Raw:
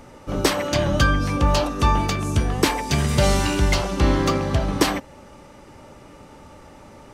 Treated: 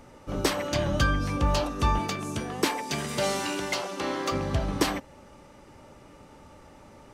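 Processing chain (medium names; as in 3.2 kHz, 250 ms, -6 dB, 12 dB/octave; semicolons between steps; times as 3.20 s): 1.98–4.31 s: high-pass 140 Hz -> 400 Hz 12 dB/octave; trim -6 dB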